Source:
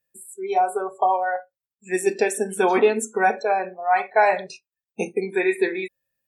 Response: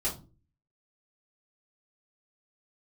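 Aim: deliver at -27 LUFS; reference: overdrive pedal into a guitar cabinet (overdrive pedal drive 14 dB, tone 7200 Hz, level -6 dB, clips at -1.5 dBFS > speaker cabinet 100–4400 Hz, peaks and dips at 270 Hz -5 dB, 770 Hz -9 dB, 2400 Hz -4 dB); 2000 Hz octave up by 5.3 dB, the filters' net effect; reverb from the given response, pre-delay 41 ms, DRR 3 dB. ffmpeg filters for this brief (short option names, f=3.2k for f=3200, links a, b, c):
-filter_complex "[0:a]equalizer=f=2k:t=o:g=8.5,asplit=2[a][b];[1:a]atrim=start_sample=2205,adelay=41[c];[b][c]afir=irnorm=-1:irlink=0,volume=-8.5dB[d];[a][d]amix=inputs=2:normalize=0,asplit=2[e][f];[f]highpass=f=720:p=1,volume=14dB,asoftclip=type=tanh:threshold=-1.5dB[g];[e][g]amix=inputs=2:normalize=0,lowpass=f=7.2k:p=1,volume=-6dB,highpass=100,equalizer=f=270:t=q:w=4:g=-5,equalizer=f=770:t=q:w=4:g=-9,equalizer=f=2.4k:t=q:w=4:g=-4,lowpass=f=4.4k:w=0.5412,lowpass=f=4.4k:w=1.3066,volume=-11dB"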